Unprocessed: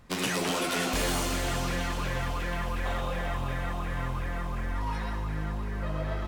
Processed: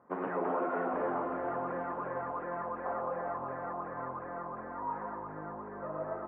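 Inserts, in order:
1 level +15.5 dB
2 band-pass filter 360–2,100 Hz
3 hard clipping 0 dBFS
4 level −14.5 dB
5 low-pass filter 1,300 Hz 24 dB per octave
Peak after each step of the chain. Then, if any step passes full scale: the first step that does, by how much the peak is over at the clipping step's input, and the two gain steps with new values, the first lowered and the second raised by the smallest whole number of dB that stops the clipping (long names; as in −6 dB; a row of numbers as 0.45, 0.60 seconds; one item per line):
−3.5, −5.5, −5.5, −20.0, −22.5 dBFS
no step passes full scale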